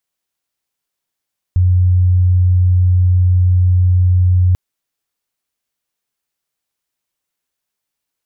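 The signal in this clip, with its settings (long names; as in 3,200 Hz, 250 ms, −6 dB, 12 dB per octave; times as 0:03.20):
tone sine 90.6 Hz −8 dBFS 2.99 s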